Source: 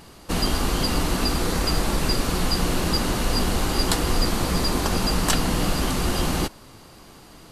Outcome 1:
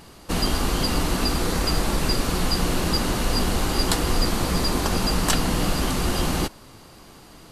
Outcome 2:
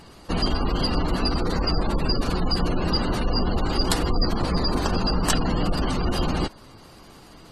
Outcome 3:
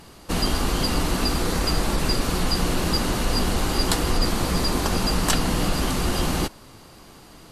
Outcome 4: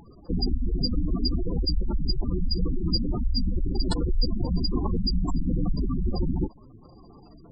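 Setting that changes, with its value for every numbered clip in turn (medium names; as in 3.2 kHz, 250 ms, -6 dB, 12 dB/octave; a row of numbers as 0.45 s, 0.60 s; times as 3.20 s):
spectral gate, under each frame's peak: -55 dB, -25 dB, -40 dB, -10 dB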